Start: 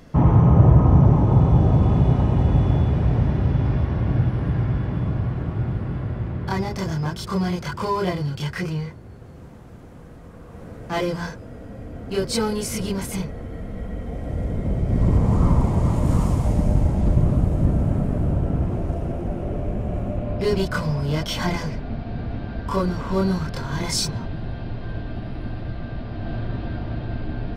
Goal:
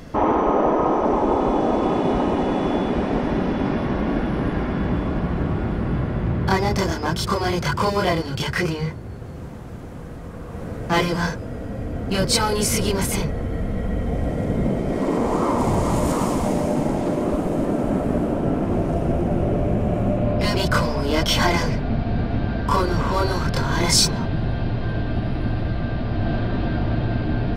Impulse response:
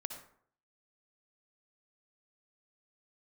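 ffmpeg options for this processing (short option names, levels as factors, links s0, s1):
-filter_complex "[0:a]asettb=1/sr,asplit=3[s0][s1][s2];[s0]atrim=end=15.584[s3];[s1]atrim=start=15.58:end=16.12,asetpts=PTS-STARTPTS,afade=t=in:d=0.004:c=qsin,afade=t=out:st=0.536:d=0.004:c=qsin,bass=f=250:g=-7,treble=f=4000:g=4[s4];[s2]atrim=start=16.116[s5];[s3][s4]acrossfade=d=0.004:c1=hsin:c2=qsin[s6];[s6][s5]acrossfade=d=0.004:c1=qsin:c2=hsin,afftfilt=real='re*lt(hypot(re,im),0.501)':imag='im*lt(hypot(re,im),0.501)':win_size=1024:overlap=0.75,volume=2.37"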